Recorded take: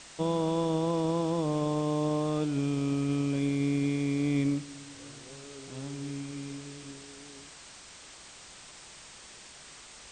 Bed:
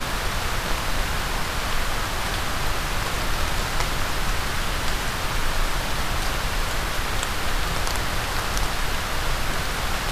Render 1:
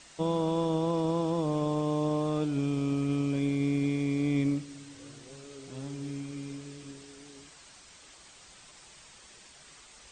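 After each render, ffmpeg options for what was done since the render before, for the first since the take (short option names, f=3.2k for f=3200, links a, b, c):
-af "afftdn=nr=6:nf=-50"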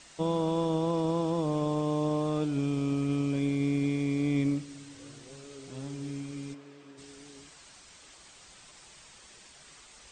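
-filter_complex "[0:a]asplit=3[a][b][c];[a]afade=t=out:st=6.53:d=0.02[d];[b]bandpass=f=890:t=q:w=0.6,afade=t=in:st=6.53:d=0.02,afade=t=out:st=6.97:d=0.02[e];[c]afade=t=in:st=6.97:d=0.02[f];[d][e][f]amix=inputs=3:normalize=0"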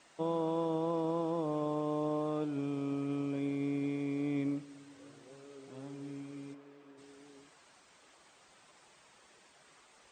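-af "highpass=f=450:p=1,equalizer=f=6.4k:w=0.31:g=-13"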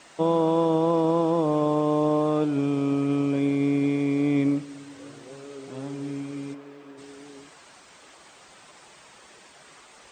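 -af "volume=11.5dB"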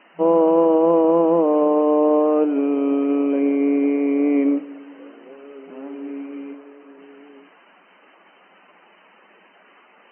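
-af "afftfilt=real='re*between(b*sr/4096,170,3100)':imag='im*between(b*sr/4096,170,3100)':win_size=4096:overlap=0.75,adynamicequalizer=threshold=0.0158:dfrequency=490:dqfactor=0.71:tfrequency=490:tqfactor=0.71:attack=5:release=100:ratio=0.375:range=4:mode=boostabove:tftype=bell"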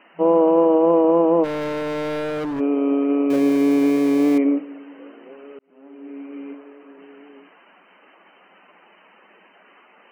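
-filter_complex "[0:a]asplit=3[a][b][c];[a]afade=t=out:st=1.43:d=0.02[d];[b]asoftclip=type=hard:threshold=-24dB,afade=t=in:st=1.43:d=0.02,afade=t=out:st=2.59:d=0.02[e];[c]afade=t=in:st=2.59:d=0.02[f];[d][e][f]amix=inputs=3:normalize=0,asettb=1/sr,asplit=3[g][h][i];[g]atrim=end=3.304[j];[h]atrim=start=3.3:end=4.38,asetpts=PTS-STARTPTS,afade=t=in:d=0.004:c=qsin,afade=t=out:st=1.076:d=0.004:c=qsin,aeval=exprs='val(0)+0.5*0.0562*sgn(val(0))':c=same[k];[i]atrim=start=4.376[l];[j][k]acrossfade=d=0.004:c1=hsin:c2=qsin[m];[m][l]acrossfade=d=0.004:c1=qsin:c2=hsin,asplit=2[n][o];[n]atrim=end=5.59,asetpts=PTS-STARTPTS,afade=t=out:st=5.586:d=0.004:c=hsin[p];[o]atrim=start=5.59,asetpts=PTS-STARTPTS,afade=t=in:d=0.93[q];[p][q]concat=n=2:v=0:a=1"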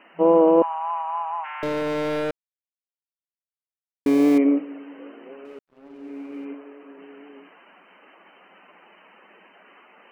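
-filter_complex "[0:a]asettb=1/sr,asplit=3[a][b][c];[a]atrim=end=0.624[d];[b]atrim=start=0.62:end=1.63,asetpts=PTS-STARTPTS,afade=t=in:d=0.004:c=qsin,afade=t=out:st=1.006:d=0.004:c=qsin,asuperpass=centerf=1500:order=20:qfactor=0.68[e];[c]atrim=start=1.626[f];[d][e]acrossfade=d=0.004:c1=hsin:c2=qsin[g];[g][f]acrossfade=d=0.004:c1=qsin:c2=hsin,asettb=1/sr,asplit=3[h][i][j];[h]atrim=end=5.454[k];[i]atrim=start=5.45:end=6.45,asetpts=PTS-STARTPTS,afade=t=in:d=0.004:c=qsin,afade=t=out:st=0.996:d=0.004:c=qsin,aeval=exprs='sgn(val(0))*max(abs(val(0))-0.0015,0)':c=same[l];[j]atrim=start=6.446[m];[k][l]acrossfade=d=0.004:c1=hsin:c2=qsin[n];[n][m]acrossfade=d=0.004:c1=qsin:c2=hsin,asplit=3[o][p][q];[o]atrim=end=2.31,asetpts=PTS-STARTPTS,afade=t=out:st=2.306:d=0.004:c=hsin[r];[p]atrim=start=2.31:end=4.06,asetpts=PTS-STARTPTS,volume=0[s];[q]atrim=start=4.06,asetpts=PTS-STARTPTS,afade=t=in:d=0.004:c=hsin[t];[r][s][t]concat=n=3:v=0:a=1"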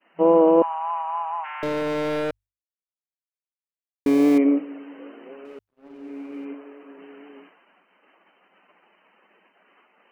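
-af "agate=range=-33dB:threshold=-45dB:ratio=3:detection=peak,bandreject=f=50:t=h:w=6,bandreject=f=100:t=h:w=6"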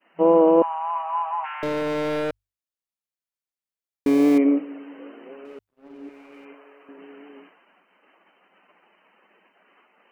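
-filter_complex "[0:a]asettb=1/sr,asplit=3[a][b][c];[a]atrim=end=0.944[d];[b]atrim=start=0.94:end=1.54,asetpts=PTS-STARTPTS,afade=t=in:d=0.004:c=qsin,afade=t=out:st=0.596:d=0.004:c=qsin,asplit=2[e][f];[f]adelay=14,volume=-4.5dB[g];[e][g]amix=inputs=2:normalize=0,atrim=end_sample=26460[h];[c]atrim=start=1.536[i];[d][h]acrossfade=d=0.004:c1=hsin:c2=qsin[j];[j][i]acrossfade=d=0.004:c1=qsin:c2=hsin,asettb=1/sr,asplit=3[k][l][m];[k]atrim=end=6.094[n];[l]atrim=start=6.09:end=6.89,asetpts=PTS-STARTPTS,afade=t=in:d=0.004:c=qsin,afade=t=out:st=0.796:d=0.004:c=qsin,equalizer=f=260:w=0.99:g=-14[o];[m]atrim=start=6.886[p];[n][o]acrossfade=d=0.004:c1=hsin:c2=qsin[q];[q][p]acrossfade=d=0.004:c1=qsin:c2=hsin"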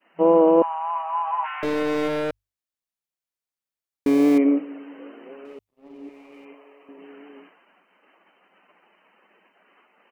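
-filter_complex "[0:a]asplit=3[a][b][c];[a]afade=t=out:st=1.24:d=0.02[d];[b]asplit=2[e][f];[f]adelay=16,volume=-2.5dB[g];[e][g]amix=inputs=2:normalize=0,afade=t=in:st=1.24:d=0.02,afade=t=out:st=2.07:d=0.02[h];[c]afade=t=in:st=2.07:d=0.02[i];[d][h][i]amix=inputs=3:normalize=0,asettb=1/sr,asplit=3[j][k][l];[j]atrim=end=5.534[m];[k]atrim=start=5.53:end=7.05,asetpts=PTS-STARTPTS,afade=t=in:d=0.004:c=qsin,afade=t=out:st=1.516:d=0.004:c=qsin,equalizer=f=1.5k:w=4:g=-11[n];[l]atrim=start=7.046[o];[m][n]acrossfade=d=0.004:c1=hsin:c2=qsin[p];[p][o]acrossfade=d=0.004:c1=qsin:c2=hsin"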